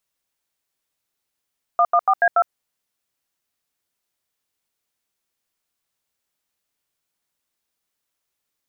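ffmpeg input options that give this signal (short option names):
-f lavfi -i "aevalsrc='0.178*clip(min(mod(t,0.143),0.06-mod(t,0.143))/0.002,0,1)*(eq(floor(t/0.143),0)*(sin(2*PI*697*mod(t,0.143))+sin(2*PI*1209*mod(t,0.143)))+eq(floor(t/0.143),1)*(sin(2*PI*697*mod(t,0.143))+sin(2*PI*1209*mod(t,0.143)))+eq(floor(t/0.143),2)*(sin(2*PI*770*mod(t,0.143))+sin(2*PI*1209*mod(t,0.143)))+eq(floor(t/0.143),3)*(sin(2*PI*697*mod(t,0.143))+sin(2*PI*1633*mod(t,0.143)))+eq(floor(t/0.143),4)*(sin(2*PI*697*mod(t,0.143))+sin(2*PI*1336*mod(t,0.143))))':d=0.715:s=44100"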